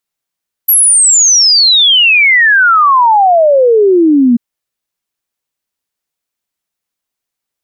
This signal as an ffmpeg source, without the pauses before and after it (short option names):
-f lavfi -i "aevalsrc='0.631*clip(min(t,3.69-t)/0.01,0,1)*sin(2*PI*12000*3.69/log(230/12000)*(exp(log(230/12000)*t/3.69)-1))':d=3.69:s=44100"